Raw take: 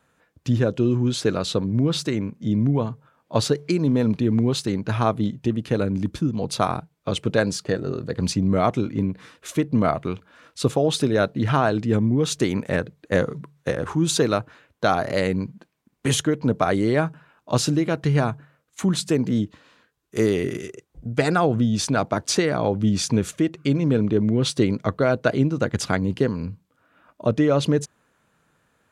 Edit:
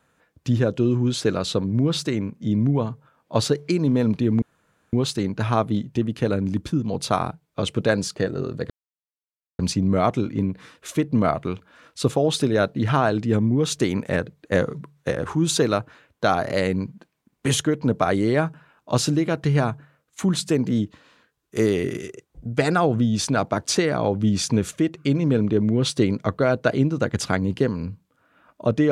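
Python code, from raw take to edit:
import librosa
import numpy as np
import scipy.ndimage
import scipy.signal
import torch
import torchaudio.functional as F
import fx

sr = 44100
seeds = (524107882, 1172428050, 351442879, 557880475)

y = fx.edit(x, sr, fx.insert_room_tone(at_s=4.42, length_s=0.51),
    fx.insert_silence(at_s=8.19, length_s=0.89), tone=tone)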